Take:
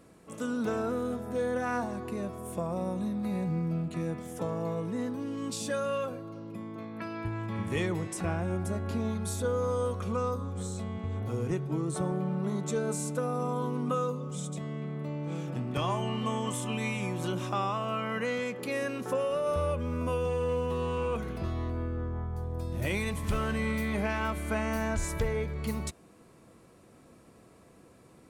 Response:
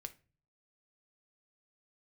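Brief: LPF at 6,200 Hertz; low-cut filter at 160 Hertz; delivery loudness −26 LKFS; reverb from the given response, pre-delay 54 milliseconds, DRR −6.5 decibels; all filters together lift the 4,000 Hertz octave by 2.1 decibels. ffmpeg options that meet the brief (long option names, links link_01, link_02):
-filter_complex "[0:a]highpass=160,lowpass=6200,equalizer=frequency=4000:width_type=o:gain=3.5,asplit=2[link_01][link_02];[1:a]atrim=start_sample=2205,adelay=54[link_03];[link_02][link_03]afir=irnorm=-1:irlink=0,volume=11dB[link_04];[link_01][link_04]amix=inputs=2:normalize=0,volume=-0.5dB"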